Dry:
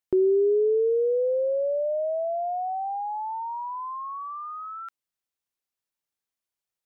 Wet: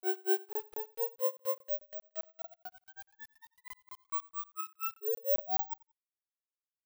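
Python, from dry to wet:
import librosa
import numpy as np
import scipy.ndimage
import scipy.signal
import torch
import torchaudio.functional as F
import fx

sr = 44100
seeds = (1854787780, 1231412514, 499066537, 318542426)

y = fx.lower_of_two(x, sr, delay_ms=1.7)
y = scipy.signal.sosfilt(scipy.signal.butter(4, 290.0, 'highpass', fs=sr, output='sos'), y)
y = y + 0.69 * np.pad(y, (int(4.6 * sr / 1000.0), 0))[:len(y)]
y = fx.over_compress(y, sr, threshold_db=-27.0, ratio=-1.0)
y = fx.granulator(y, sr, seeds[0], grain_ms=172.0, per_s=4.2, spray_ms=100.0, spread_st=0)
y = fx.spec_paint(y, sr, seeds[1], shape='rise', start_s=5.01, length_s=0.72, low_hz=400.0, high_hz=920.0, level_db=-28.0)
y = fx.quant_dither(y, sr, seeds[2], bits=8, dither='none')
y = fx.tremolo_shape(y, sr, shape='saw_up', hz=2.6, depth_pct=60)
y = fx.granulator(y, sr, seeds[3], grain_ms=206.0, per_s=4.4, spray_ms=14.0, spread_st=0)
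y = fx.echo_feedback(y, sr, ms=90, feedback_pct=24, wet_db=-23.0)
y = (np.kron(y[::2], np.eye(2)[0]) * 2)[:len(y)]
y = fx.buffer_crackle(y, sr, first_s=0.53, period_s=0.21, block=1024, kind='zero')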